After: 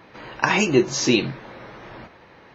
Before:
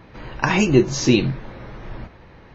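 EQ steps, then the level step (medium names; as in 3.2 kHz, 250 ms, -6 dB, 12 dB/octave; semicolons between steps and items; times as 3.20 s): high-pass 390 Hz 6 dB/octave; +1.5 dB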